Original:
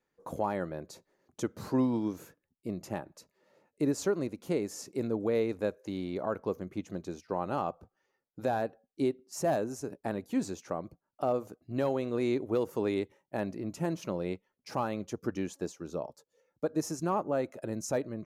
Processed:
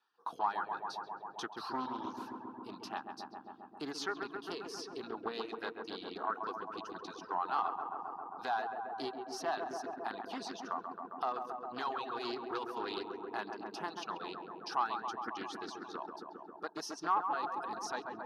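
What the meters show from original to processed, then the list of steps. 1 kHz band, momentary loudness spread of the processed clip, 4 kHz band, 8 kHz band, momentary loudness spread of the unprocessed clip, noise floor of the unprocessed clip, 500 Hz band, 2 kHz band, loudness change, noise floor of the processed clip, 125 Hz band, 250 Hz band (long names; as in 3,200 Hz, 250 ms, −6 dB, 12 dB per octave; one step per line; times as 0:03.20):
+3.0 dB, 10 LU, +4.0 dB, −7.5 dB, 10 LU, −84 dBFS, −10.5 dB, +1.5 dB, −6.0 dB, −55 dBFS, −21.0 dB, −12.5 dB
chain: Chebyshev band-pass filter 710–6,400 Hz, order 2
phaser with its sweep stopped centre 2,100 Hz, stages 6
on a send: feedback echo with a low-pass in the loop 134 ms, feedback 84%, low-pass 2,100 Hz, level −3.5 dB
on the sum: reverb reduction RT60 0.92 s
in parallel at −1 dB: downward compressor, threshold −50 dBFS, peak gain reduction 18 dB
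on the sum: highs frequency-modulated by the lows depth 0.19 ms
level +3.5 dB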